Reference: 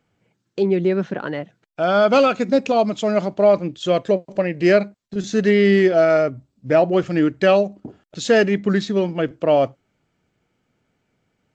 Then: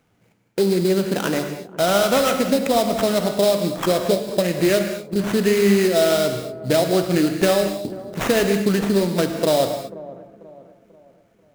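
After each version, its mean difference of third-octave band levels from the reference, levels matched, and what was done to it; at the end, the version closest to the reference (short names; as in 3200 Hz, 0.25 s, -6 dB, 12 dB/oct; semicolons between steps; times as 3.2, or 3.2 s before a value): 12.5 dB: compressor 4:1, threshold -21 dBFS, peak gain reduction 10 dB; sample-rate reducer 4500 Hz, jitter 20%; on a send: dark delay 0.489 s, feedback 41%, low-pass 1000 Hz, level -17 dB; on the sum: non-linear reverb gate 0.26 s flat, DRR 5.5 dB; gain +4.5 dB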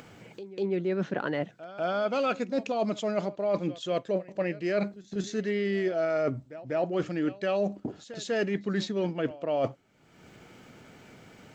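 3.5 dB: pre-echo 0.195 s -24 dB; reverse; compressor 8:1, threshold -28 dBFS, peak gain reduction 17.5 dB; reverse; low shelf 86 Hz -9 dB; upward compressor, threshold -39 dBFS; gain +2.5 dB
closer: second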